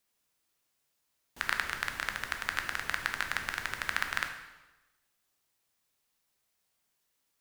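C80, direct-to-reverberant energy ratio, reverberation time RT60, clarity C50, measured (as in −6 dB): 9.5 dB, 4.5 dB, 1.1 s, 7.5 dB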